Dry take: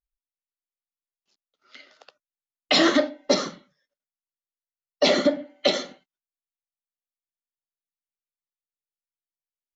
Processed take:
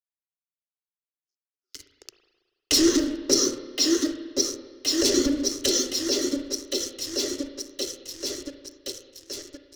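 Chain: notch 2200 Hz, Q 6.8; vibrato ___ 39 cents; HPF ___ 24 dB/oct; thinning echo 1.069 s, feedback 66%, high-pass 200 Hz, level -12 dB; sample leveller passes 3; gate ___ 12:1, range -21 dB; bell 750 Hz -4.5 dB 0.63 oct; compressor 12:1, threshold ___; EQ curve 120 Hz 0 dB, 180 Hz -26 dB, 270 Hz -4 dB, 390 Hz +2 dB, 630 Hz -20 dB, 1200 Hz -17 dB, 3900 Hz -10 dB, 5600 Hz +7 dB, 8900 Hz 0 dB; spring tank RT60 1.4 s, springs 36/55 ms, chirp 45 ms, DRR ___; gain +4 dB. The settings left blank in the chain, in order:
8.1 Hz, 120 Hz, -49 dBFS, -18 dBFS, 8 dB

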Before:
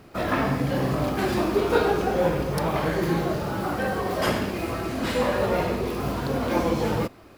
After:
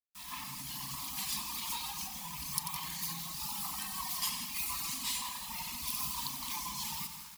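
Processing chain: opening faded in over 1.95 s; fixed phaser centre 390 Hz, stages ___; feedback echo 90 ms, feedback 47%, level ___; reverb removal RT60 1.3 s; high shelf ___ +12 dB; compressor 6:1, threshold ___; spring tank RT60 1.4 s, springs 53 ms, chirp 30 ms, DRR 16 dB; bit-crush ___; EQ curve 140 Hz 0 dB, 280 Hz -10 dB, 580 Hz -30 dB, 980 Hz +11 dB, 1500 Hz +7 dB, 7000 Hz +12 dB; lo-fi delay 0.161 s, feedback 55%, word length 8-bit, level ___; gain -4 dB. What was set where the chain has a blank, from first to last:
6, -7.5 dB, 4000 Hz, -37 dBFS, 9-bit, -10 dB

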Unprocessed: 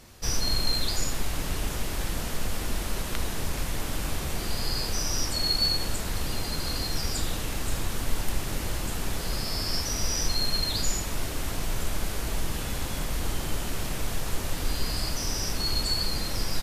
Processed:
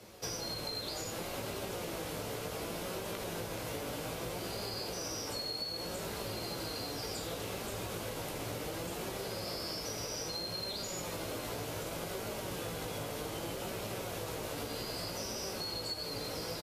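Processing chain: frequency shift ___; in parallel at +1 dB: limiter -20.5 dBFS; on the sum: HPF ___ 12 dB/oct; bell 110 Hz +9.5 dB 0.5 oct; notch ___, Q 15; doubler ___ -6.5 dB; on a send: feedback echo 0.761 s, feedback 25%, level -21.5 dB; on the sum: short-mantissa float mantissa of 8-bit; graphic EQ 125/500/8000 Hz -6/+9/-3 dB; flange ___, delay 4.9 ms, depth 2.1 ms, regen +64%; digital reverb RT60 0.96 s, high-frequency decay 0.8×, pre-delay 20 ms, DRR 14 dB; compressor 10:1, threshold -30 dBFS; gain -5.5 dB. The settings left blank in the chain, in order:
-23 Hz, 84 Hz, 1800 Hz, 18 ms, 0.65 Hz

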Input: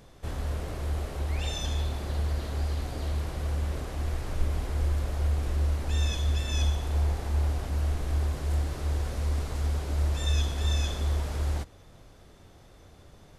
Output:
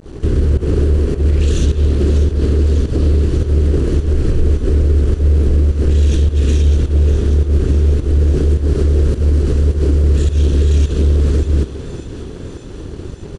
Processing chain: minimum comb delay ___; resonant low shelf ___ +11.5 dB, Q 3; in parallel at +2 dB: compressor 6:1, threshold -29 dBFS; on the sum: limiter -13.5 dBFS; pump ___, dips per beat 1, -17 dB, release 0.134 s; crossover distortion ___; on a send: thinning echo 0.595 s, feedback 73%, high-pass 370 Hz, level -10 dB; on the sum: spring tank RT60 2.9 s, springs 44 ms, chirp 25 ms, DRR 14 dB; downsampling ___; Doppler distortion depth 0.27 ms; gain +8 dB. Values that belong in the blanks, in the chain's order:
0.69 ms, 570 Hz, 105 bpm, -45.5 dBFS, 22050 Hz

